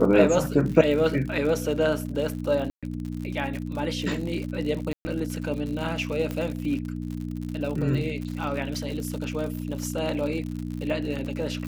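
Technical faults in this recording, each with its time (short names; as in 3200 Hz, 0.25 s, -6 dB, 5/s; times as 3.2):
crackle 80/s -32 dBFS
hum 60 Hz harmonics 5 -32 dBFS
2.7–2.83 gap 0.126 s
4.93–5.05 gap 0.12 s
6.31 pop -17 dBFS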